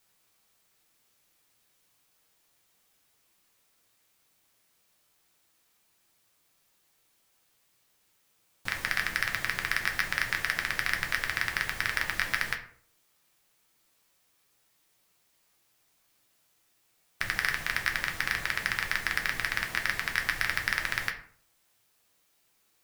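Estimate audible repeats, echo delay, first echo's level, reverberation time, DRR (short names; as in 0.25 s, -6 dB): none, none, none, 0.50 s, 2.5 dB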